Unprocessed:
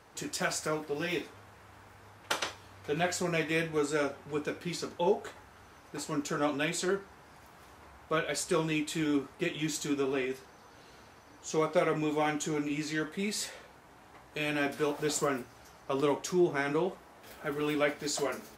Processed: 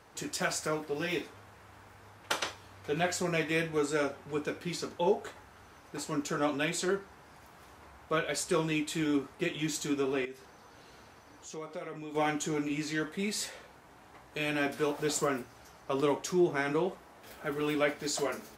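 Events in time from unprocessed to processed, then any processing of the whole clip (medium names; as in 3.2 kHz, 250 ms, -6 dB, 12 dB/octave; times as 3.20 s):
10.25–12.15 s: compression 2:1, threshold -48 dBFS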